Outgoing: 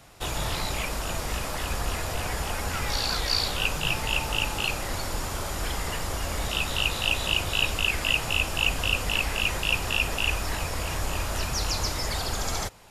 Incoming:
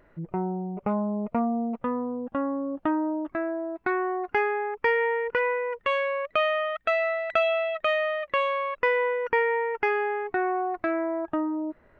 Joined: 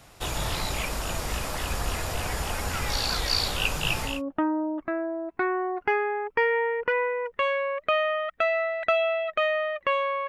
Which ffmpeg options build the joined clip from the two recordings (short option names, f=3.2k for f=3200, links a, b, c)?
-filter_complex "[0:a]apad=whole_dur=10.28,atrim=end=10.28,atrim=end=4.22,asetpts=PTS-STARTPTS[a];[1:a]atrim=start=2.49:end=8.75,asetpts=PTS-STARTPTS[b];[a][b]acrossfade=d=0.2:c1=tri:c2=tri"